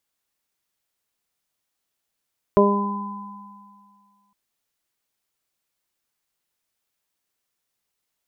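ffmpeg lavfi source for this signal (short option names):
-f lavfi -i "aevalsrc='0.15*pow(10,-3*t/1.96)*sin(2*PI*202*t)+0.251*pow(10,-3*t/0.75)*sin(2*PI*404*t)+0.168*pow(10,-3*t/0.51)*sin(2*PI*606*t)+0.0211*pow(10,-3*t/2.25)*sin(2*PI*808*t)+0.126*pow(10,-3*t/2.21)*sin(2*PI*1010*t)':d=1.76:s=44100"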